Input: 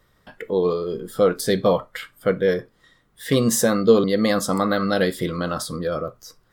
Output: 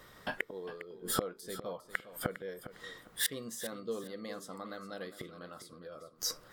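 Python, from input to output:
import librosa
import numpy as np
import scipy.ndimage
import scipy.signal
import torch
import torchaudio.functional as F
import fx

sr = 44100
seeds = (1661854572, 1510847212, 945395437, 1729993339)

p1 = fx.low_shelf(x, sr, hz=150.0, db=-11.0)
p2 = fx.gate_flip(p1, sr, shuts_db=-23.0, range_db=-30)
p3 = p2 + fx.echo_feedback(p2, sr, ms=405, feedback_pct=24, wet_db=-13, dry=0)
y = p3 * 10.0 ** (8.0 / 20.0)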